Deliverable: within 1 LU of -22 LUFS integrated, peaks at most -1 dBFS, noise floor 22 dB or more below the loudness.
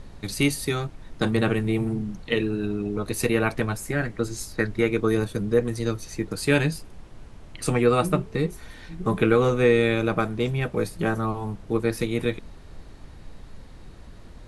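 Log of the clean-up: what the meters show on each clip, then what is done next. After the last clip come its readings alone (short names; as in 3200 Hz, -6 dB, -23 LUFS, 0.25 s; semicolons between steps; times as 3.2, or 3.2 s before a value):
noise floor -45 dBFS; noise floor target -47 dBFS; loudness -25.0 LUFS; peak -6.5 dBFS; loudness target -22.0 LUFS
-> noise print and reduce 6 dB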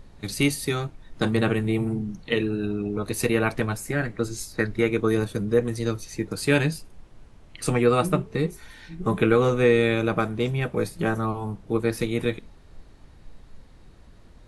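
noise floor -50 dBFS; loudness -25.0 LUFS; peak -6.5 dBFS; loudness target -22.0 LUFS
-> gain +3 dB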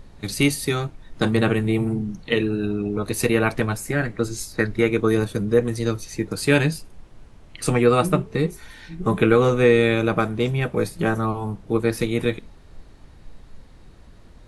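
loudness -22.0 LUFS; peak -3.5 dBFS; noise floor -47 dBFS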